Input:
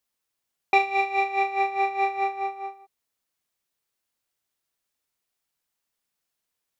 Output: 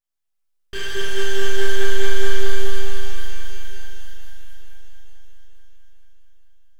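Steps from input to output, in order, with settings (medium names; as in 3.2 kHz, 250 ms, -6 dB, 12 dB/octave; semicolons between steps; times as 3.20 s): rattle on loud lows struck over -43 dBFS, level -13 dBFS; full-wave rectifier; on a send: echo whose repeats swap between lows and highs 219 ms, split 1.3 kHz, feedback 75%, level -2 dB; on the sum: pitch-shifted reverb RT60 3.1 s, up +12 st, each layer -8 dB, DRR -8.5 dB; trim -10.5 dB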